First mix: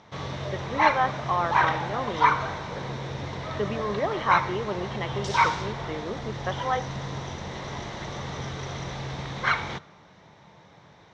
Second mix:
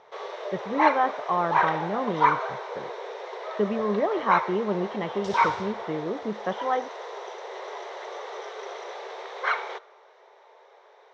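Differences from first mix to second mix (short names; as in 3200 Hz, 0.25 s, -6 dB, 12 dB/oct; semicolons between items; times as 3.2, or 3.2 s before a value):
first sound: add brick-wall FIR high-pass 370 Hz; master: add tilt -3 dB/oct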